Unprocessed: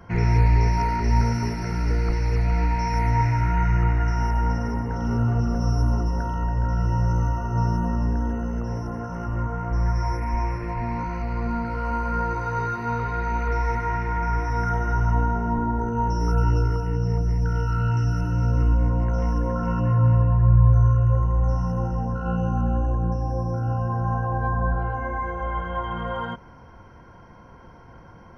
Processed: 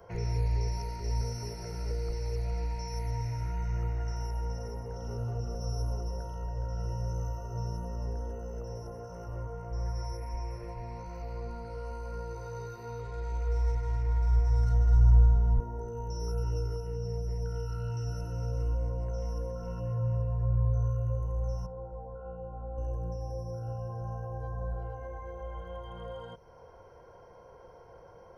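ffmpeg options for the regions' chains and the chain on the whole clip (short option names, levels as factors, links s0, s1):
-filter_complex "[0:a]asettb=1/sr,asplit=3[s0][s1][s2];[s0]atrim=end=13.014[s3];[s1]atrim=start=13.01:end=15.6,asetpts=PTS-STARTPTS,afade=t=in:d=0.004:c=qsin,afade=t=out:st=2.586:d=0.004:c=qsin,asubboost=boost=10.5:cutoff=120,adynamicsmooth=sensitivity=6.5:basefreq=4800[s4];[s2]atrim=start=15.596[s5];[s3][s4]acrossfade=d=0.004:c1=hsin:c2=qsin[s6];[s6][s5]acrossfade=d=0.004:c1=qsin:c2=hsin,asettb=1/sr,asplit=3[s7][s8][s9];[s7]atrim=end=21.664[s10];[s8]atrim=start=21.66:end=22.78,asetpts=PTS-STARTPTS,afade=t=in:d=0.004:c=qsin,afade=t=out:st=1.116:d=0.004:c=qsin,lowpass=1100,equalizer=f=140:w=0.5:g=-10[s11];[s9]atrim=start=22.776[s12];[s10][s11]acrossfade=d=0.004:c1=hsin:c2=qsin[s13];[s13][s12]acrossfade=d=0.004:c1=qsin:c2=hsin,lowshelf=f=350:t=q:w=3:g=-10.5,acrossover=split=250|3000[s14][s15][s16];[s15]acompressor=threshold=0.00891:ratio=3[s17];[s14][s17][s16]amix=inputs=3:normalize=0,equalizer=f=1800:t=o:w=2.7:g=-11.5"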